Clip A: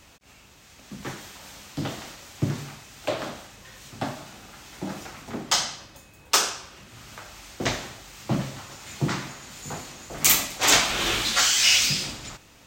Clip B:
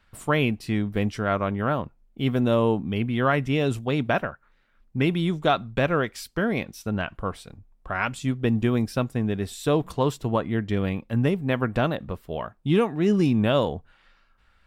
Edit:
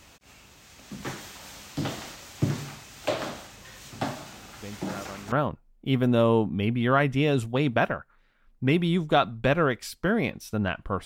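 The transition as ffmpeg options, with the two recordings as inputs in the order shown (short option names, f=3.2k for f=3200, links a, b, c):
-filter_complex "[1:a]asplit=2[a][b];[0:a]apad=whole_dur=11.05,atrim=end=11.05,atrim=end=5.322[c];[b]atrim=start=1.648:end=7.38[d];[a]atrim=start=0.89:end=1.65,asetpts=PTS-STARTPTS,volume=-15.5dB,afade=t=in:d=0.004:c=hsin,afade=t=out:st=0.756:d=0.004:c=hsin,adelay=4560[e];[c][d]acrossfade=d=0.004:c1=hsin:c2=hsin[f];[f][e]amix=inputs=2:normalize=0"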